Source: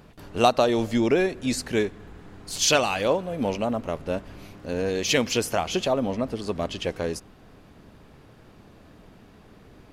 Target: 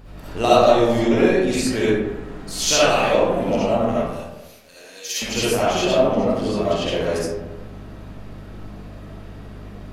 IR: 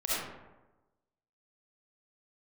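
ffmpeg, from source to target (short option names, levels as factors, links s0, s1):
-filter_complex "[0:a]aeval=exprs='0.596*(cos(1*acos(clip(val(0)/0.596,-1,1)))-cos(1*PI/2))+0.015*(cos(6*acos(clip(val(0)/0.596,-1,1)))-cos(6*PI/2))+0.0075*(cos(8*acos(clip(val(0)/0.596,-1,1)))-cos(8*PI/2))':c=same,asplit=2[s0][s1];[s1]acompressor=threshold=0.0316:ratio=6,volume=1[s2];[s0][s2]amix=inputs=2:normalize=0,aeval=exprs='val(0)+0.0141*(sin(2*PI*50*n/s)+sin(2*PI*2*50*n/s)/2+sin(2*PI*3*50*n/s)/3+sin(2*PI*4*50*n/s)/4+sin(2*PI*5*50*n/s)/5)':c=same,asettb=1/sr,asplit=3[s3][s4][s5];[s3]atrim=end=4.064[s6];[s4]atrim=start=4.06:end=5.22,asetpts=PTS-STARTPTS,afade=t=in:d=0.004:c=qsin,afade=t=out:st=1.156:d=0.004:c=qsin,aderivative[s7];[s5]atrim=start=5.216[s8];[s6][s7]acrossfade=d=0.004:c1=hsin:c2=qsin[s9];[s9][s8]acrossfade=d=0.004:c1=qsin:c2=hsin[s10];[1:a]atrim=start_sample=2205[s11];[s10][s11]afir=irnorm=-1:irlink=0,volume=0.596"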